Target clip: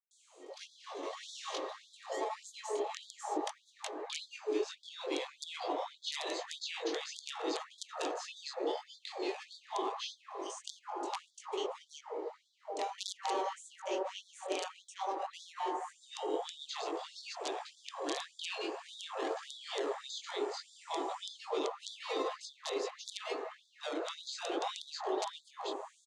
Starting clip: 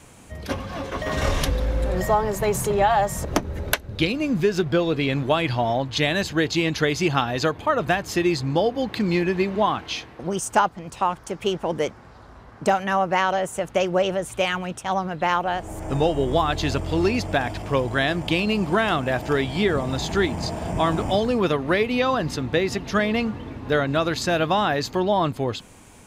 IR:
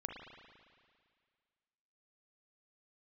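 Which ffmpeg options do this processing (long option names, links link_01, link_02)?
-filter_complex "[0:a]bandreject=frequency=211.4:width_type=h:width=4,bandreject=frequency=422.8:width_type=h:width=4,bandreject=frequency=634.2:width_type=h:width=4,bandreject=frequency=845.6:width_type=h:width=4,bandreject=frequency=1057:width_type=h:width=4,bandreject=frequency=1268.4:width_type=h:width=4,bandreject=frequency=1479.8:width_type=h:width=4,bandreject=frequency=1691.2:width_type=h:width=4,bandreject=frequency=1902.6:width_type=h:width=4,bandreject=frequency=2114:width_type=h:width=4,bandreject=frequency=2325.4:width_type=h:width=4,bandreject=frequency=2536.8:width_type=h:width=4,acrossover=split=520|4400[link_01][link_02][link_03];[link_01]acompressor=threshold=-31dB:ratio=4[link_04];[link_02]acompressor=threshold=-23dB:ratio=4[link_05];[link_03]acompressor=threshold=-38dB:ratio=4[link_06];[link_04][link_05][link_06]amix=inputs=3:normalize=0,flanger=delay=19:depth=3.2:speed=0.52,aeval=exprs='(mod(6.68*val(0)+1,2)-1)/6.68':channel_layout=same,afreqshift=13,acrossover=split=360|1200|3000[link_07][link_08][link_09][link_10];[link_09]acrusher=samples=39:mix=1:aa=0.000001:lfo=1:lforange=23.4:lforate=0.76[link_11];[link_07][link_08][link_11][link_10]amix=inputs=4:normalize=0,highpass=110,equalizer=frequency=230:width_type=q:width=4:gain=10,equalizer=frequency=620:width_type=q:width=4:gain=-6,equalizer=frequency=1500:width_type=q:width=4:gain=-9,equalizer=frequency=5300:width_type=q:width=4:gain=-6,lowpass=frequency=7000:width=0.5412,lowpass=frequency=7000:width=1.3066,acrossover=split=650[link_12][link_13];[link_13]adelay=110[link_14];[link_12][link_14]amix=inputs=2:normalize=0[link_15];[1:a]atrim=start_sample=2205,asetrate=22050,aresample=44100[link_16];[link_15][link_16]afir=irnorm=-1:irlink=0,afftfilt=real='re*gte(b*sr/1024,280*pow(3400/280,0.5+0.5*sin(2*PI*1.7*pts/sr)))':imag='im*gte(b*sr/1024,280*pow(3400/280,0.5+0.5*sin(2*PI*1.7*pts/sr)))':win_size=1024:overlap=0.75,volume=-3dB"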